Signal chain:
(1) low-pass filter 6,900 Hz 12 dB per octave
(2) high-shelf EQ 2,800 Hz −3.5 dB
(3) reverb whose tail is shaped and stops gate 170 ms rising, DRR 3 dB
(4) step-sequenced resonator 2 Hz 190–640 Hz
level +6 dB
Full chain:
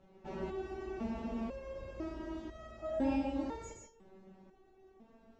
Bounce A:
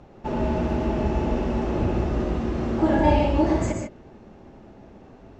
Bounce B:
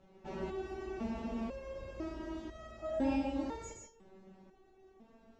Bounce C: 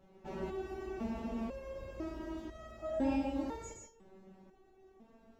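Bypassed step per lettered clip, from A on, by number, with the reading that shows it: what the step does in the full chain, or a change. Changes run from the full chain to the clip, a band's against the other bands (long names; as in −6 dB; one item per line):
4, 125 Hz band +8.0 dB
2, 4 kHz band +2.0 dB
1, change in momentary loudness spread −1 LU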